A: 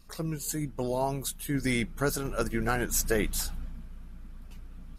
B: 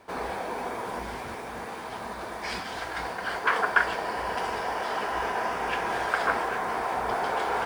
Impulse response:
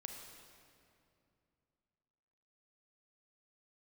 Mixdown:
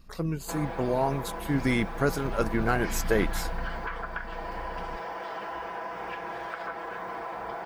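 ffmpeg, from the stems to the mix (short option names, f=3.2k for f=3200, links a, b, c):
-filter_complex "[0:a]volume=3dB[a];[1:a]aecho=1:1:6:0.65,acompressor=threshold=-31dB:ratio=5,adelay=400,volume=-2dB[b];[a][b]amix=inputs=2:normalize=0,equalizer=f=9.9k:t=o:w=1.8:g=-11.5"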